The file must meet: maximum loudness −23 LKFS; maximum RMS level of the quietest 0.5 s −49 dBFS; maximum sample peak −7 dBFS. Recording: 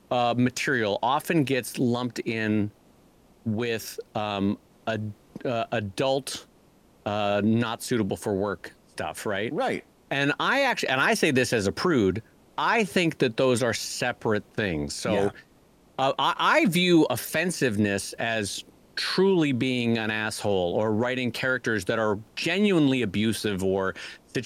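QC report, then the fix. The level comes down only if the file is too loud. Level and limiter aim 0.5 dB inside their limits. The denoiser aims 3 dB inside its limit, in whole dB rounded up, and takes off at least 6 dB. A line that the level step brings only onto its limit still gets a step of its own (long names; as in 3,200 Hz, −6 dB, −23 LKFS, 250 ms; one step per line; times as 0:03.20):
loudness −25.5 LKFS: in spec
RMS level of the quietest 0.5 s −58 dBFS: in spec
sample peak −8.5 dBFS: in spec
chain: no processing needed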